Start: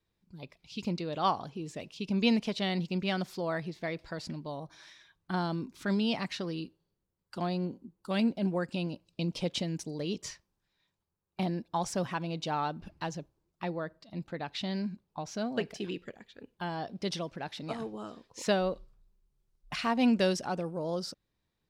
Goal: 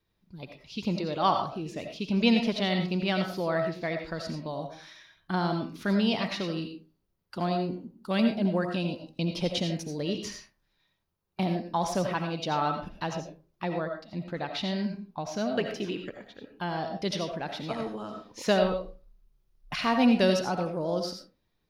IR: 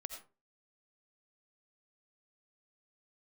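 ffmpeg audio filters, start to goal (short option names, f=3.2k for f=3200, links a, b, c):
-filter_complex "[0:a]equalizer=f=7.9k:w=3.8:g=-12[a];[1:a]atrim=start_sample=2205[b];[a][b]afir=irnorm=-1:irlink=0,volume=7.5dB"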